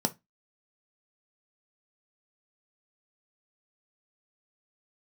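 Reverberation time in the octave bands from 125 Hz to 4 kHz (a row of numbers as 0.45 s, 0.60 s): 0.25 s, 0.25 s, 0.20 s, 0.20 s, 0.20 s, 0.20 s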